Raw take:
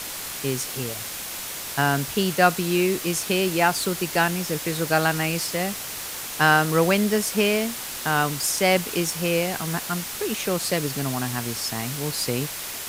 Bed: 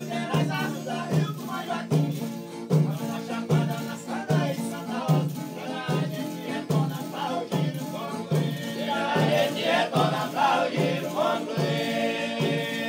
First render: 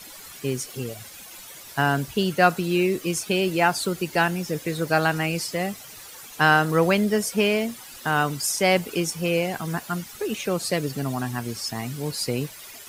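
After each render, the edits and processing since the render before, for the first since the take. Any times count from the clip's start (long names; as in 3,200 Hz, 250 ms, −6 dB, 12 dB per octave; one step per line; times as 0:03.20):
broadband denoise 13 dB, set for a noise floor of −33 dBFS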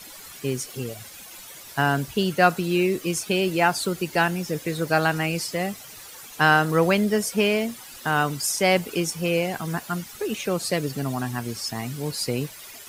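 no processing that can be heard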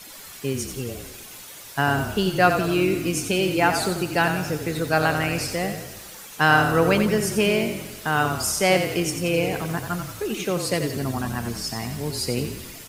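echo with shifted repeats 88 ms, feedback 49%, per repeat −34 Hz, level −7.5 dB
four-comb reverb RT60 2.1 s, combs from 26 ms, DRR 15.5 dB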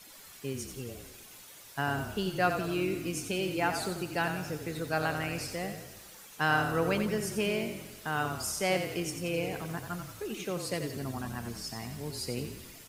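level −10 dB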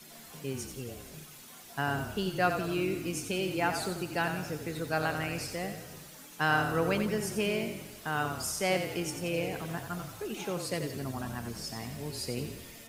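mix in bed −26.5 dB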